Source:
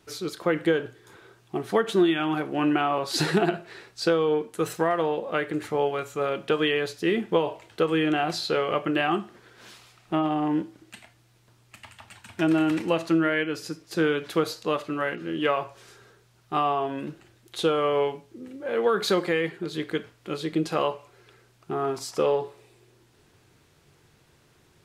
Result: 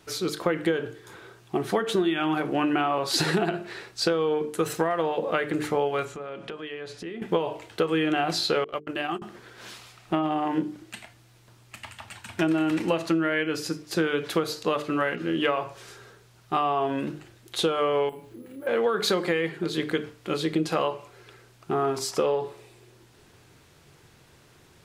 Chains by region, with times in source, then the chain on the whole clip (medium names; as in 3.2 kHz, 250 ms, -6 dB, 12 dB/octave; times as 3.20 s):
6.05–7.22 s: low-pass 11 kHz 24 dB/octave + treble shelf 4.8 kHz -8 dB + compression, threshold -39 dBFS
8.64–9.22 s: gate -25 dBFS, range -52 dB + tone controls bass -1 dB, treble +6 dB + compression 3:1, threshold -32 dBFS
18.09–18.67 s: careless resampling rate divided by 4×, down filtered, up hold + compression 2:1, threshold -49 dBFS + doubling 33 ms -4.5 dB
whole clip: hum notches 50/100/150/200/250/300/350/400/450 Hz; compression 5:1, threshold -26 dBFS; trim +5 dB